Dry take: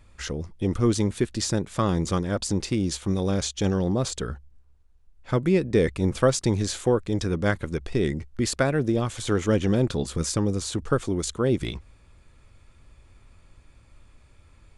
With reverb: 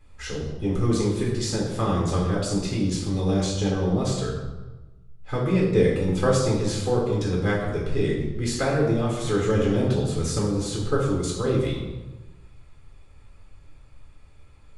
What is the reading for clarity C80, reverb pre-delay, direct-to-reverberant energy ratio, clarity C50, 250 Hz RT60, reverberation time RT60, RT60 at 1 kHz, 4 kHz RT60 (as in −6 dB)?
5.5 dB, 3 ms, −4.5 dB, 2.5 dB, 1.3 s, 1.2 s, 1.1 s, 0.80 s